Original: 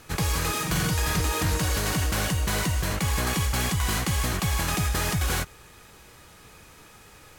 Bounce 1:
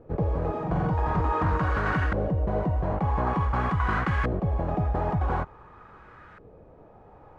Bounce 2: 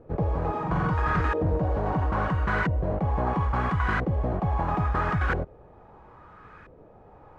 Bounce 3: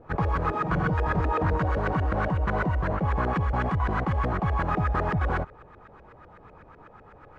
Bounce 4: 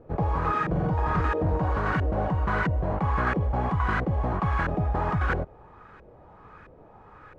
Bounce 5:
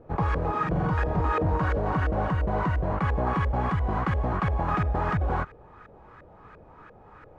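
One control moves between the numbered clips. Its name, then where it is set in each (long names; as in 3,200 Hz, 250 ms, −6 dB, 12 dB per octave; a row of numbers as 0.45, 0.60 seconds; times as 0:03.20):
auto-filter low-pass, speed: 0.47, 0.75, 8, 1.5, 2.9 Hertz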